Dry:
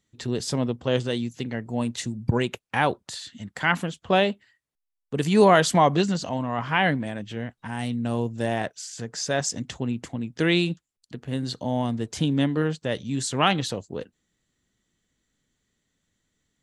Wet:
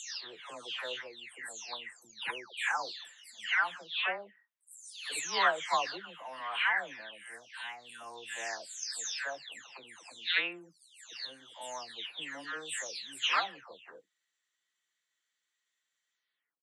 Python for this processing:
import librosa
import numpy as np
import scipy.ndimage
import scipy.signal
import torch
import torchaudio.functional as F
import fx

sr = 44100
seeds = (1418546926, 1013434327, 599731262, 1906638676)

y = fx.spec_delay(x, sr, highs='early', ms=517)
y = scipy.signal.sosfilt(scipy.signal.butter(2, 1400.0, 'highpass', fs=sr, output='sos'), y)
y = fx.high_shelf(y, sr, hz=4200.0, db=-8.0)